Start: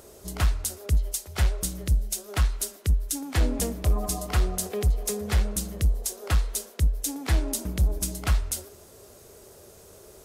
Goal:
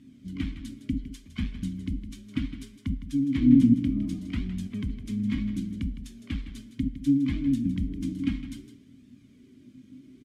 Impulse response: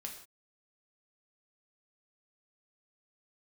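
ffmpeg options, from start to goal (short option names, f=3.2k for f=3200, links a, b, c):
-filter_complex "[0:a]asplit=3[a][b][c];[a]bandpass=f=270:t=q:w=8,volume=0dB[d];[b]bandpass=f=2.29k:t=q:w=8,volume=-6dB[e];[c]bandpass=f=3.01k:t=q:w=8,volume=-9dB[f];[d][e][f]amix=inputs=3:normalize=0,lowshelf=f=320:t=q:w=3:g=11.5,flanger=delay=1.1:depth=2.6:regen=30:speed=0.66:shape=sinusoidal,asplit=2[g][h];[h]asetrate=22050,aresample=44100,atempo=2,volume=-11dB[i];[g][i]amix=inputs=2:normalize=0,aecho=1:1:160:0.251,asplit=2[j][k];[1:a]atrim=start_sample=2205,asetrate=52920,aresample=44100[l];[k][l]afir=irnorm=-1:irlink=0,volume=-4dB[m];[j][m]amix=inputs=2:normalize=0,volume=5.5dB"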